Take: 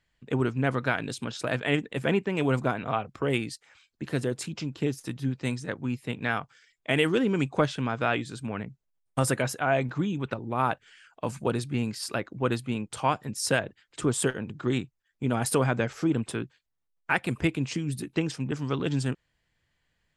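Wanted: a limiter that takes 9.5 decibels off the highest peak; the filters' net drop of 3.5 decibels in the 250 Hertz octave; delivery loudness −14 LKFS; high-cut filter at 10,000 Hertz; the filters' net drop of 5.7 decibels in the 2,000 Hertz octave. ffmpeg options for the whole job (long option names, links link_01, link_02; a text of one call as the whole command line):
ffmpeg -i in.wav -af "lowpass=10000,equalizer=frequency=250:width_type=o:gain=-4.5,equalizer=frequency=2000:width_type=o:gain=-8,volume=19.5dB,alimiter=limit=-1.5dB:level=0:latency=1" out.wav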